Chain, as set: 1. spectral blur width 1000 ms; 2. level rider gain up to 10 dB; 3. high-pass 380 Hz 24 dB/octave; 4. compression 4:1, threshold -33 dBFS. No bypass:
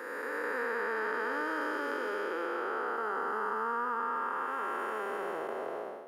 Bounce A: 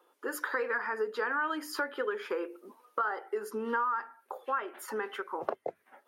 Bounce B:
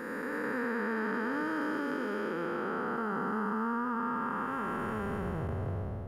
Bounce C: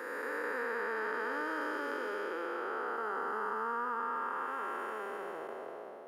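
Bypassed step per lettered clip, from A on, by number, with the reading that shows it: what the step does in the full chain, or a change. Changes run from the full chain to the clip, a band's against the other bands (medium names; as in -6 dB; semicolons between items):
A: 1, 4 kHz band +3.5 dB; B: 3, 250 Hz band +12.0 dB; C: 2, momentary loudness spread change +2 LU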